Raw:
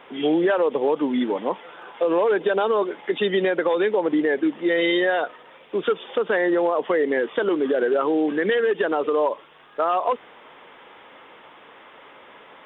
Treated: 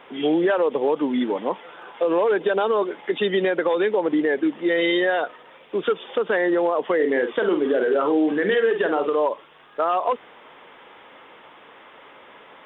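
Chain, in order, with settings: 6.95–9.15 doubler 48 ms -7 dB

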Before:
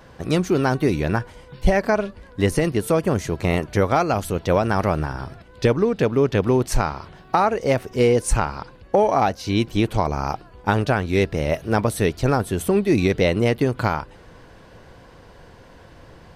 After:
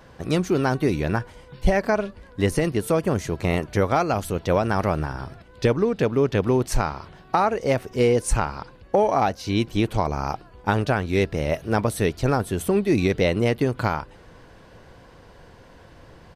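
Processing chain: downsampling 32000 Hz; gain -2 dB

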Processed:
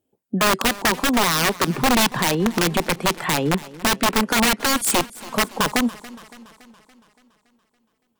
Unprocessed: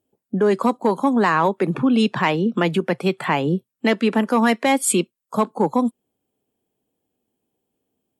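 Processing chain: wrapped overs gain 12 dB; warbling echo 0.283 s, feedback 57%, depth 61 cents, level -19 dB

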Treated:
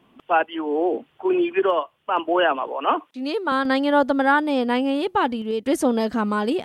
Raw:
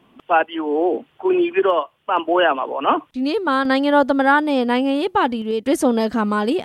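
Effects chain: 2.67–3.52 HPF 300 Hz 12 dB/oct; gain -3 dB

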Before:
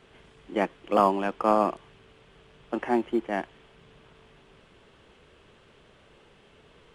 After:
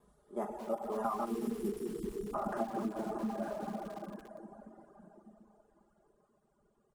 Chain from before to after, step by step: slices in reverse order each 0.163 s, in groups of 2; Doppler pass-by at 2.01, 29 m/s, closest 4.4 m; comb 4.9 ms, depth 73%; on a send: analogue delay 72 ms, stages 1024, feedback 79%, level -13.5 dB; on the sum: plate-style reverb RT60 4.6 s, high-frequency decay 0.9×, DRR -3 dB; spectral delete 1.26–2.34, 490–2800 Hz; in parallel at -11 dB: hard clip -34.5 dBFS, distortion -9 dB; on the sum: EQ curve 1200 Hz 0 dB, 2500 Hz -23 dB, 9300 Hz +8 dB; compressor 8:1, threshold -36 dBFS, peak gain reduction 9.5 dB; reverb removal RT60 1.7 s; lo-fi delay 0.224 s, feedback 55%, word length 8-bit, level -13.5 dB; gain +6.5 dB

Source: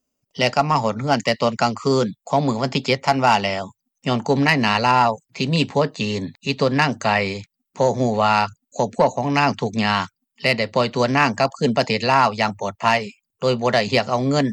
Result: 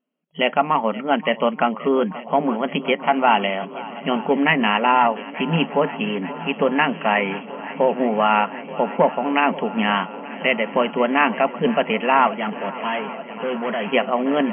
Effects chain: swung echo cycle 0.88 s, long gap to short 1.5:1, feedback 75%, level -18 dB; 12.27–13.92 overloaded stage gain 20.5 dB; FFT band-pass 160–3300 Hz

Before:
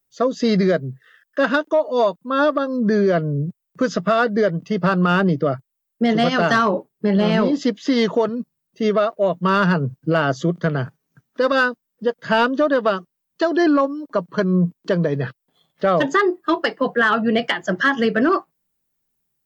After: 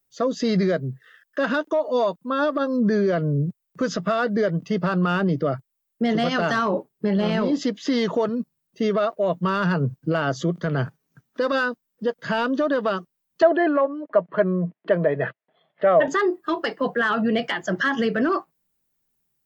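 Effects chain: limiter -14 dBFS, peak gain reduction 7.5 dB; 13.42–16.08 speaker cabinet 190–2900 Hz, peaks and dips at 260 Hz -6 dB, 640 Hz +10 dB, 1900 Hz +6 dB

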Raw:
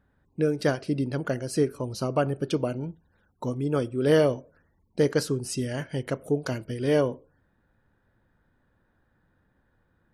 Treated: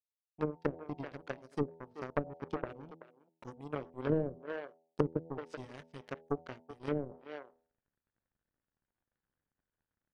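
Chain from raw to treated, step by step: in parallel at -1 dB: compressor 6:1, threshold -35 dBFS, peak gain reduction 17.5 dB; on the sum: power-law curve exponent 3; reverse; upward compressor, threshold -41 dBFS; reverse; high shelf 6500 Hz -9 dB; de-hum 81.66 Hz, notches 11; speakerphone echo 0.38 s, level -14 dB; treble ducked by the level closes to 350 Hz, closed at -29.5 dBFS; gain +2 dB

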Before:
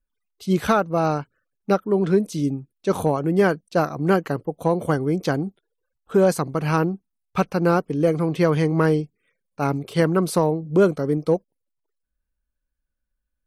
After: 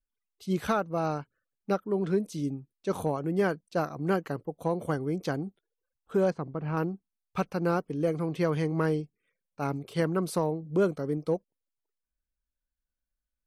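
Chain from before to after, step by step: 6.3–6.77 tape spacing loss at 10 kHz 39 dB; gain -8.5 dB

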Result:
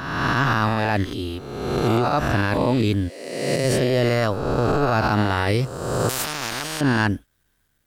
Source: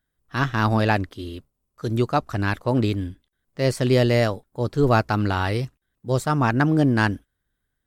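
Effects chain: spectral swells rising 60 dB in 1.35 s; 3.08–3.63 HPF 370 Hz -> 99 Hz 24 dB/oct; limiter -14.5 dBFS, peak gain reduction 11 dB; bit-crush 12-bit; 6.09–6.81 spectral compressor 4:1; gain +4 dB

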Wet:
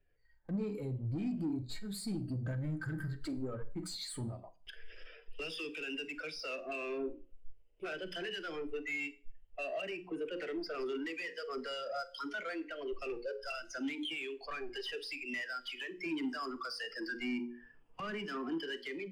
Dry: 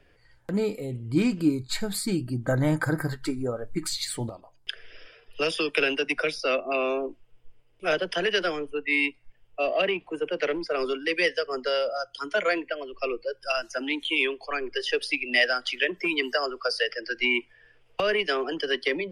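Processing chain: notches 60/120/180/240/300/360/420/480/540 Hz; dynamic EQ 580 Hz, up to -8 dB, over -41 dBFS, Q 0.98; AGC gain up to 8 dB; 16.06–18.58 graphic EQ 125/250/500/1000/2000/4000/8000 Hz +8/+11/-7/+8/-4/-5/+8 dB; compressor 6:1, threshold -27 dBFS, peak gain reduction 14.5 dB; soft clip -28.5 dBFS, distortion -11 dB; sample leveller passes 1; Schroeder reverb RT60 0.51 s, combs from 33 ms, DRR 11 dB; spectral expander 1.5:1; gain -3.5 dB

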